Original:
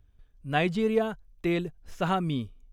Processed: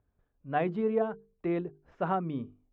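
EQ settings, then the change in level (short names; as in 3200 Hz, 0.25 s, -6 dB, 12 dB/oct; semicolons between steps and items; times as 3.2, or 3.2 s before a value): HPF 260 Hz 6 dB/oct; LPF 1200 Hz 12 dB/oct; notches 50/100/150/200/250/300/350/400/450 Hz; 0.0 dB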